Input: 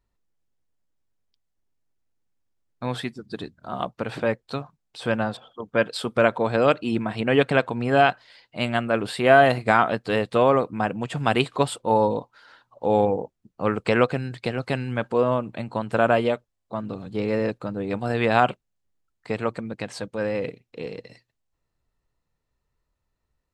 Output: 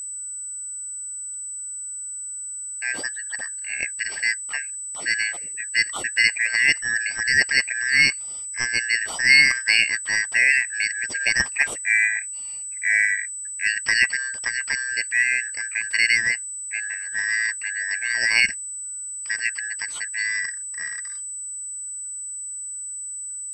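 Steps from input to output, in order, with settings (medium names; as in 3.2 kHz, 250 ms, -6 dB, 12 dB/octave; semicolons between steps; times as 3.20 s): four frequency bands reordered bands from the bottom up 3142; whistle 8 kHz -30 dBFS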